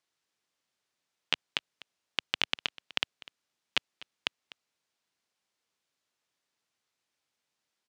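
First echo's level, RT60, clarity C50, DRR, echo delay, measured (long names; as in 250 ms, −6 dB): −20.0 dB, no reverb audible, no reverb audible, no reverb audible, 249 ms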